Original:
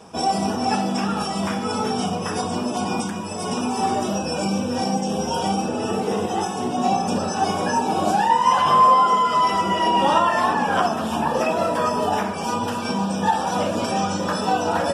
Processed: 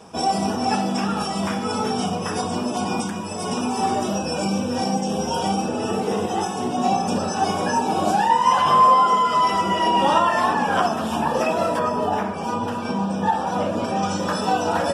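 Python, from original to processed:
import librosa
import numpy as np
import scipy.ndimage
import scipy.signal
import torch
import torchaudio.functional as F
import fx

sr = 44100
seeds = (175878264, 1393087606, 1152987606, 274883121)

y = fx.high_shelf(x, sr, hz=2800.0, db=-9.5, at=(11.79, 14.03))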